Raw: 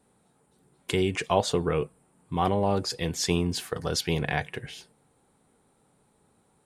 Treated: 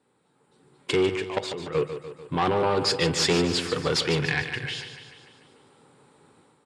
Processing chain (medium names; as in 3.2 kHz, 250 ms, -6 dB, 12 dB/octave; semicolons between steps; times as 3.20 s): tracing distortion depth 0.055 ms; 1.09–1.75 s: level held to a coarse grid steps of 20 dB; 2.81–3.46 s: waveshaping leveller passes 1; 4.20–4.61 s: peaking EQ 490 Hz -14.5 dB 1.6 oct; level rider gain up to 11.5 dB; saturation -15 dBFS, distortion -9 dB; cabinet simulation 140–7600 Hz, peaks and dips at 200 Hz -9 dB, 680 Hz -8 dB, 6.2 kHz -8 dB; feedback delay 147 ms, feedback 57%, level -10 dB